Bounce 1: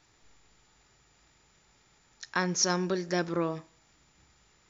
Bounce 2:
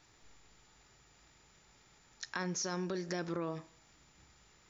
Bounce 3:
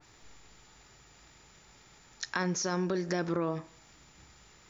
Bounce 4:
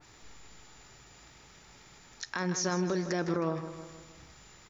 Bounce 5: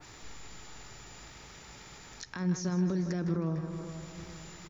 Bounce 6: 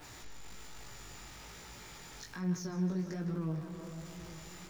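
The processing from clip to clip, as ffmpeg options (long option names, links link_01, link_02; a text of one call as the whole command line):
ffmpeg -i in.wav -af "alimiter=limit=-23.5dB:level=0:latency=1:release=11,acompressor=threshold=-34dB:ratio=5" out.wav
ffmpeg -i in.wav -af "adynamicequalizer=threshold=0.002:dfrequency=2300:dqfactor=0.7:tfrequency=2300:tqfactor=0.7:attack=5:release=100:ratio=0.375:range=3:mode=cutabove:tftype=highshelf,volume=6.5dB" out.wav
ffmpeg -i in.wav -filter_complex "[0:a]asplit=2[link_01][link_02];[link_02]aecho=0:1:157|314|471|628|785:0.251|0.128|0.0653|0.0333|0.017[link_03];[link_01][link_03]amix=inputs=2:normalize=0,alimiter=limit=-24dB:level=0:latency=1:release=283,volume=2.5dB" out.wav
ffmpeg -i in.wav -filter_complex "[0:a]acrossover=split=240[link_01][link_02];[link_02]acompressor=threshold=-53dB:ratio=2.5[link_03];[link_01][link_03]amix=inputs=2:normalize=0,asplit=2[link_04][link_05];[link_05]adelay=451,lowpass=frequency=2700:poles=1,volume=-12.5dB,asplit=2[link_06][link_07];[link_07]adelay=451,lowpass=frequency=2700:poles=1,volume=0.53,asplit=2[link_08][link_09];[link_09]adelay=451,lowpass=frequency=2700:poles=1,volume=0.53,asplit=2[link_10][link_11];[link_11]adelay=451,lowpass=frequency=2700:poles=1,volume=0.53,asplit=2[link_12][link_13];[link_13]adelay=451,lowpass=frequency=2700:poles=1,volume=0.53[link_14];[link_04][link_06][link_08][link_10][link_12][link_14]amix=inputs=6:normalize=0,volume=6dB" out.wav
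ffmpeg -i in.wav -af "aeval=exprs='val(0)+0.5*0.00708*sgn(val(0))':channel_layout=same,flanger=delay=16.5:depth=5.8:speed=1.2,volume=-3.5dB" out.wav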